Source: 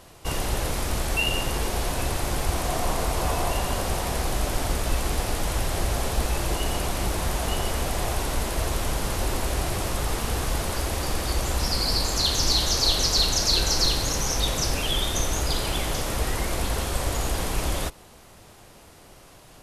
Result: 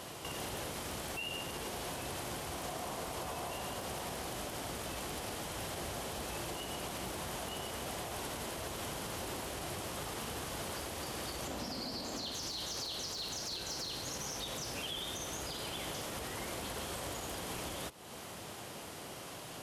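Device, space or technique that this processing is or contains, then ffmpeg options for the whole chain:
broadcast voice chain: -filter_complex "[0:a]asettb=1/sr,asplit=3[s0][s1][s2];[s0]atrim=end=11.474[s3];[s1]atrim=start=11.47:end=12.32,asetpts=PTS-STARTPTS,afade=t=in:d=0.004:c=qsin,afade=t=out:st=0.846:d=0.004:c=qsin,equalizer=f=250:t=o:w=0.67:g=11,equalizer=f=630:t=o:w=0.67:g=5,equalizer=f=10000:t=o:w=0.67:g=-5[s4];[s2]atrim=start=12.316[s5];[s3][s4]acrossfade=d=0.004:c1=hsin:c2=qsin[s6];[s6][s5]acrossfade=d=0.004:c1=qsin:c2=hsin,highpass=120,deesser=0.45,acompressor=threshold=0.00708:ratio=4,equalizer=f=3100:t=o:w=0.21:g=4,alimiter=level_in=3.55:limit=0.0631:level=0:latency=1:release=60,volume=0.282,volume=1.58"

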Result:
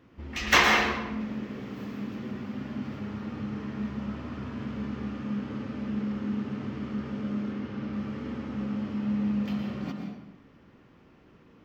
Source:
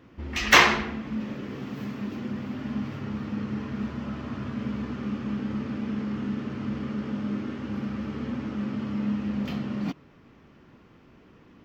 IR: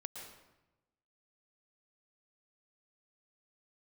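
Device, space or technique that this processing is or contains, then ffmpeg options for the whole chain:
bathroom: -filter_complex "[0:a]asettb=1/sr,asplit=3[s0][s1][s2];[s0]atrim=end=7.514[s3];[s1]atrim=start=7.51:end=7.93,asetpts=PTS-STARTPTS,afade=t=in:d=0.004:c=qsin,afade=t=out:st=0.416:d=0.004:c=qsin,lowpass=6200[s4];[s2]atrim=start=7.926[s5];[s3][s4]acrossfade=d=0.004:c1=hsin:c2=qsin[s6];[s6][s5]acrossfade=d=0.004:c1=qsin:c2=hsin[s7];[1:a]atrim=start_sample=2205[s8];[s7][s8]afir=irnorm=-1:irlink=0"

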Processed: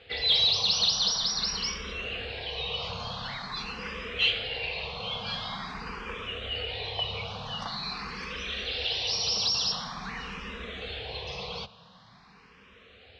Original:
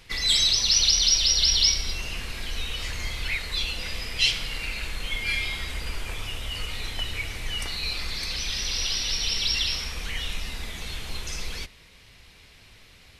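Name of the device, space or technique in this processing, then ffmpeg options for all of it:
barber-pole phaser into a guitar amplifier: -filter_complex "[0:a]asettb=1/sr,asplit=3[s0][s1][s2];[s0]atrim=end=9.074[s3];[s1]atrim=start=9.07:end=9.72,asetpts=PTS-STARTPTS,afade=t=in:d=0.004:c=qsin,afade=t=out:st=0.646:d=0.004:c=qsin,highshelf=f=4300:t=q:w=3:g=6.5[s4];[s2]atrim=start=9.716[s5];[s3][s4]acrossfade=d=0.004:c1=hsin:c2=qsin[s6];[s6][s5]acrossfade=d=0.004:c1=qsin:c2=hsin,asplit=2[s7][s8];[s8]afreqshift=0.46[s9];[s7][s9]amix=inputs=2:normalize=1,asoftclip=type=tanh:threshold=0.158,highpass=95,equalizer=f=190:t=q:w=4:g=6,equalizer=f=320:t=q:w=4:g=-10,equalizer=f=470:t=q:w=4:g=9,equalizer=f=750:t=q:w=4:g=7,equalizer=f=1100:t=q:w=4:g=7,equalizer=f=2100:t=q:w=4:g=-7,lowpass=f=4200:w=0.5412,lowpass=f=4200:w=1.3066,volume=1.41"

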